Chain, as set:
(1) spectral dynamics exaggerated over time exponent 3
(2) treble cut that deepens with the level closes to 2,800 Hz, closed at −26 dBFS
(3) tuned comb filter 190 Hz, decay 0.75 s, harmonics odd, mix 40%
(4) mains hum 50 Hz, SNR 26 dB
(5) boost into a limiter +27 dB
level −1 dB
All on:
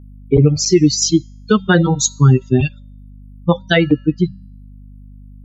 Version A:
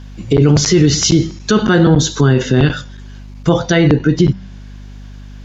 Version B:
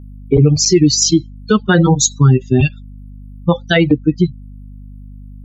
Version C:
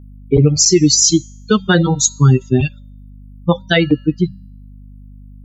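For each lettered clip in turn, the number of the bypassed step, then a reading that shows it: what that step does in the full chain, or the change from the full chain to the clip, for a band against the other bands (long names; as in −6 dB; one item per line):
1, change in momentary loudness spread −1 LU
3, 4 kHz band +2.0 dB
2, 4 kHz band +4.0 dB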